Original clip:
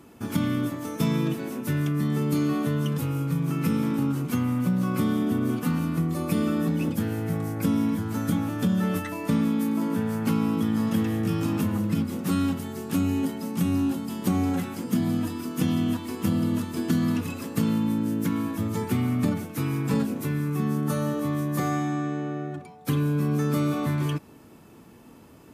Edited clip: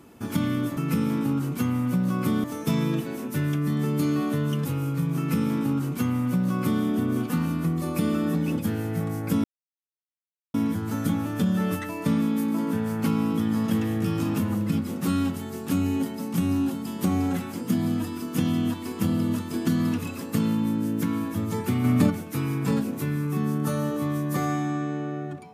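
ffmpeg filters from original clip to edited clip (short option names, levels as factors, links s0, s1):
-filter_complex "[0:a]asplit=6[s0][s1][s2][s3][s4][s5];[s0]atrim=end=0.772[s6];[s1]atrim=start=3.498:end=5.172[s7];[s2]atrim=start=0.768:end=7.77,asetpts=PTS-STARTPTS,afade=t=out:st=6.998:d=0.004:c=hsin,apad=pad_dur=1.1[s8];[s3]atrim=start=7.77:end=19.072,asetpts=PTS-STARTPTS,afade=t=in:d=0.004:c=hsin[s9];[s4]atrim=start=19.068:end=19.332,asetpts=PTS-STARTPTS,volume=1.68[s10];[s5]atrim=start=19.328[s11];[s6][s7]acrossfade=d=0.004:c1=hsin:c2=hsin[s12];[s8][s9]concat=n=2:v=0:a=1[s13];[s12][s13]acrossfade=d=0.004:c1=hsin:c2=hsin[s14];[s14][s10]acrossfade=d=0.004:c1=hsin:c2=hsin[s15];[s15][s11]acrossfade=d=0.004:c1=hsin:c2=hsin"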